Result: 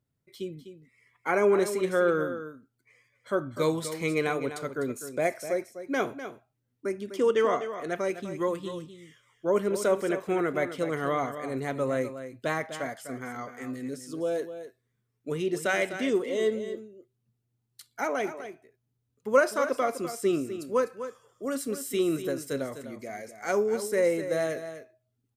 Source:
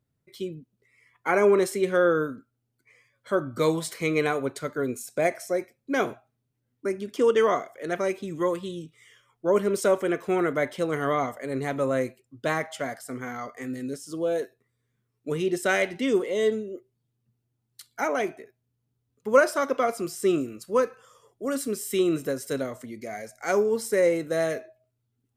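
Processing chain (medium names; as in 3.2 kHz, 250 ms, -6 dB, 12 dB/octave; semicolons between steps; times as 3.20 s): 7.36–7.77 s: peaking EQ 12 kHz -12.5 dB 0.49 oct; delay 251 ms -11 dB; trim -3 dB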